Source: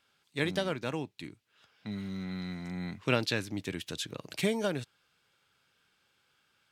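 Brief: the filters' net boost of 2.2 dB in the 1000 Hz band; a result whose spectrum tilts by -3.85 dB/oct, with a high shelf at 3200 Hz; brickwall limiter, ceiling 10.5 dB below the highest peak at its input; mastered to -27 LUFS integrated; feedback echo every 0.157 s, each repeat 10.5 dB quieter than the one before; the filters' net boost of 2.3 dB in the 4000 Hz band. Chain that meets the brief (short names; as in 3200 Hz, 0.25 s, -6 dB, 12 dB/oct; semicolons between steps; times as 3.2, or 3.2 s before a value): bell 1000 Hz +3.5 dB; high shelf 3200 Hz -6.5 dB; bell 4000 Hz +7 dB; limiter -19.5 dBFS; feedback echo 0.157 s, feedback 30%, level -10.5 dB; gain +8.5 dB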